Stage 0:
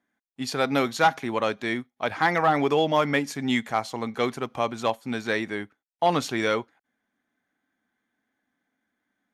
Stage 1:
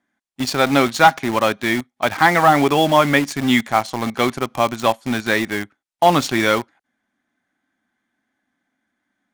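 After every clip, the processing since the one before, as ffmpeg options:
ffmpeg -i in.wav -filter_complex "[0:a]lowpass=frequency=11000:width=0.5412,lowpass=frequency=11000:width=1.3066,equalizer=frequency=460:width=7.9:gain=-9.5,asplit=2[link_01][link_02];[link_02]acrusher=bits=4:mix=0:aa=0.000001,volume=-4.5dB[link_03];[link_01][link_03]amix=inputs=2:normalize=0,volume=4.5dB" out.wav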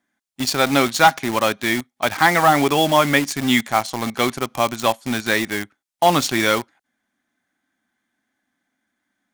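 ffmpeg -i in.wav -af "highshelf=frequency=3700:gain=7,volume=-2dB" out.wav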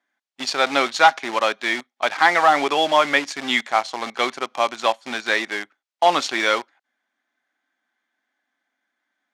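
ffmpeg -i in.wav -af "highpass=460,lowpass=5100" out.wav

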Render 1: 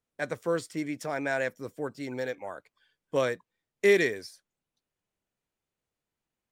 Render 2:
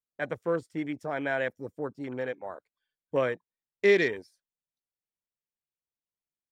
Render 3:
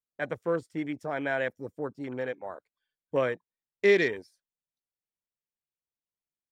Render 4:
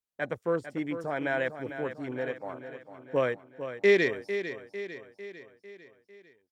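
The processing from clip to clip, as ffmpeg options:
ffmpeg -i in.wav -af "afwtdn=0.00891" out.wav
ffmpeg -i in.wav -af anull out.wav
ffmpeg -i in.wav -af "aecho=1:1:450|900|1350|1800|2250|2700:0.299|0.158|0.0839|0.0444|0.0236|0.0125" out.wav

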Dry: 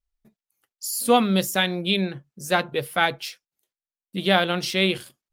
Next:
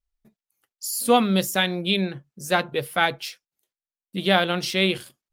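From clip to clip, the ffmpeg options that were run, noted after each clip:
ffmpeg -i in.wav -af anull out.wav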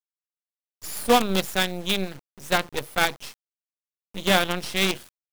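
ffmpeg -i in.wav -af "aeval=exprs='0.75*(cos(1*acos(clip(val(0)/0.75,-1,1)))-cos(1*PI/2))+0.188*(cos(2*acos(clip(val(0)/0.75,-1,1)))-cos(2*PI/2))':channel_layout=same,acrusher=bits=4:dc=4:mix=0:aa=0.000001,volume=-2dB" out.wav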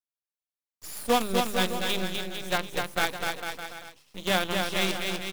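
ffmpeg -i in.wav -filter_complex "[0:a]bandreject=frequency=50:width_type=h:width=6,bandreject=frequency=100:width_type=h:width=6,bandreject=frequency=150:width_type=h:width=6,bandreject=frequency=200:width_type=h:width=6,asplit=2[link_01][link_02];[link_02]aecho=0:1:250|450|610|738|840.4:0.631|0.398|0.251|0.158|0.1[link_03];[link_01][link_03]amix=inputs=2:normalize=0,volume=-5.5dB" out.wav

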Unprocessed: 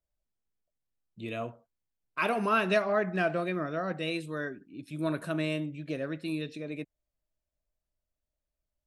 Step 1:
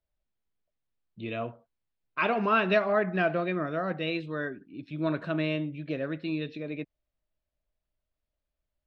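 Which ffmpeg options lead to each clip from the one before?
ffmpeg -i in.wav -af "lowpass=frequency=4100:width=0.5412,lowpass=frequency=4100:width=1.3066,volume=2dB" out.wav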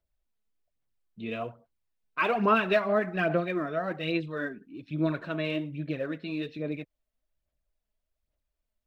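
ffmpeg -i in.wav -af "aphaser=in_gain=1:out_gain=1:delay=4.7:decay=0.49:speed=1.2:type=sinusoidal,volume=-1.5dB" out.wav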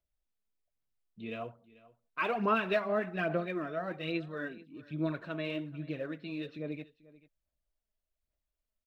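ffmpeg -i in.wav -af "aecho=1:1:439:0.0944,volume=-5.5dB" out.wav

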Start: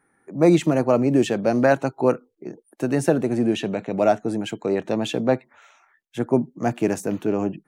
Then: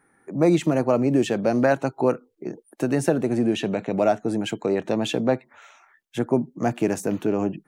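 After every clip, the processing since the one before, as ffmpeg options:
ffmpeg -i in.wav -af "acompressor=threshold=-27dB:ratio=1.5,volume=3dB" out.wav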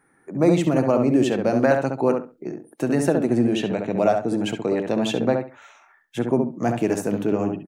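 ffmpeg -i in.wav -filter_complex "[0:a]asplit=2[link_01][link_02];[link_02]adelay=68,lowpass=frequency=2000:poles=1,volume=-4dB,asplit=2[link_03][link_04];[link_04]adelay=68,lowpass=frequency=2000:poles=1,volume=0.23,asplit=2[link_05][link_06];[link_06]adelay=68,lowpass=frequency=2000:poles=1,volume=0.23[link_07];[link_01][link_03][link_05][link_07]amix=inputs=4:normalize=0" out.wav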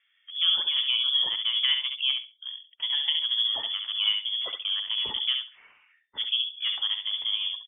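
ffmpeg -i in.wav -af "lowpass=frequency=3100:width_type=q:width=0.5098,lowpass=frequency=3100:width_type=q:width=0.6013,lowpass=frequency=3100:width_type=q:width=0.9,lowpass=frequency=3100:width_type=q:width=2.563,afreqshift=-3600,volume=-7dB" out.wav

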